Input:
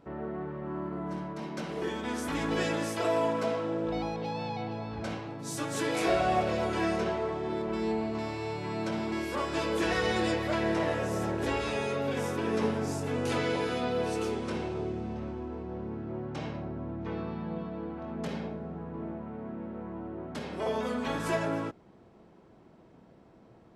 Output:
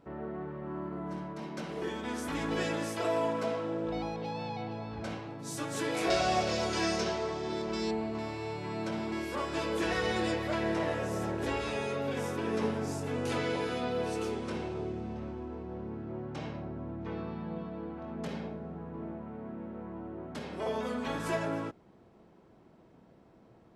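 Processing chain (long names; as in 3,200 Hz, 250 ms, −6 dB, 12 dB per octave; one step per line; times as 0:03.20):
0:06.10–0:07.91: parametric band 5,600 Hz +15 dB 1.3 octaves
level −2.5 dB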